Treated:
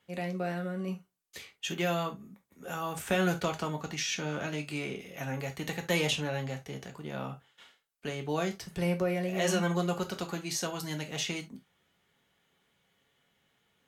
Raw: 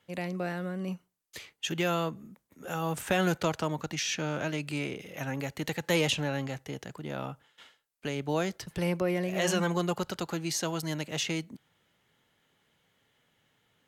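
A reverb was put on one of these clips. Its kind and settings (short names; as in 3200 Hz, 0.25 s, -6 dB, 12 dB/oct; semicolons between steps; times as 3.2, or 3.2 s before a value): non-linear reverb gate 90 ms falling, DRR 3 dB; gain -3 dB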